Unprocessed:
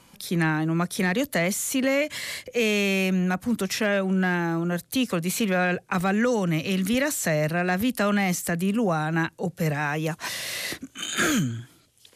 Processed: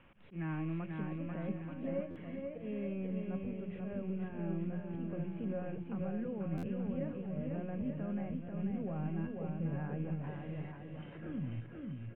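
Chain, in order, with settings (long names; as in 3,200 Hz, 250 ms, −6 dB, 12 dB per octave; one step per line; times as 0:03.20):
loose part that buzzes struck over −31 dBFS, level −24 dBFS
spectral tilt −2.5 dB per octave
brickwall limiter −19.5 dBFS, peak gain reduction 9 dB
mains-hum notches 60/120/180/240/300/360 Hz
tuned comb filter 550 Hz, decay 0.44 s, mix 80%
background noise white −58 dBFS
Butterworth low-pass 3,000 Hz 72 dB per octave
volume swells 110 ms
parametric band 2,100 Hz −3 dB 2.6 octaves, from 0:01.00 −14 dB
bouncing-ball delay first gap 490 ms, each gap 0.8×, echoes 5
buffer that repeats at 0:02.10/0:06.57, samples 512, times 4
level +1.5 dB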